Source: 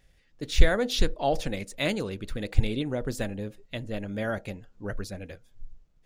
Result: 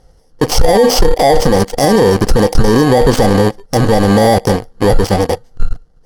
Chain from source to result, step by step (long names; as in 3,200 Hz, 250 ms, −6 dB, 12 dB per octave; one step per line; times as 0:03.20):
samples in bit-reversed order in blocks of 32 samples
low-pass filter 6,000 Hz 12 dB per octave
parametric band 2,500 Hz −14.5 dB 0.29 octaves
leveller curve on the samples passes 3
hollow resonant body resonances 490/750 Hz, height 11 dB, ringing for 30 ms
boost into a limiter +22 dB
level −1 dB